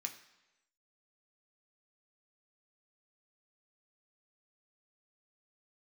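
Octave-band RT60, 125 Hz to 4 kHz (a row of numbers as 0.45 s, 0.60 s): 0.90 s, 0.90 s, 1.0 s, 1.0 s, 1.0 s, 0.95 s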